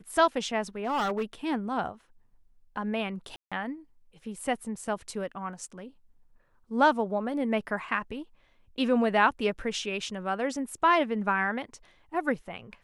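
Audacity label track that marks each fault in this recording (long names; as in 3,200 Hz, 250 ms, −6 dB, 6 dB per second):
0.850000	1.240000	clipping −24.5 dBFS
3.360000	3.520000	drop-out 156 ms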